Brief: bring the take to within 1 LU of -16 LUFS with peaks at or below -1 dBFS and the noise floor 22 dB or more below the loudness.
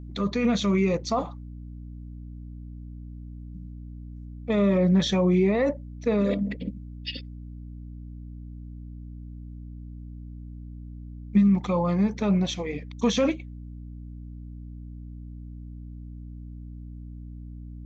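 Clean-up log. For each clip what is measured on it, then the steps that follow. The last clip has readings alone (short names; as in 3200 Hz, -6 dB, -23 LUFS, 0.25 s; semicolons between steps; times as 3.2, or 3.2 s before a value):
hum 60 Hz; harmonics up to 300 Hz; hum level -36 dBFS; loudness -25.0 LUFS; peak -10.0 dBFS; loudness target -16.0 LUFS
-> de-hum 60 Hz, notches 5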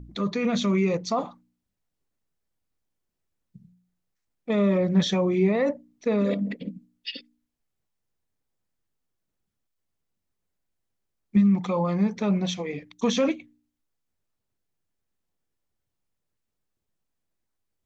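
hum none; loudness -25.0 LUFS; peak -10.5 dBFS; loudness target -16.0 LUFS
-> gain +9 dB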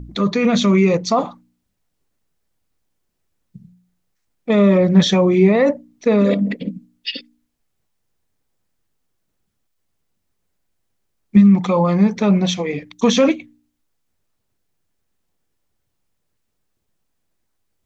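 loudness -16.0 LUFS; peak -1.5 dBFS; noise floor -72 dBFS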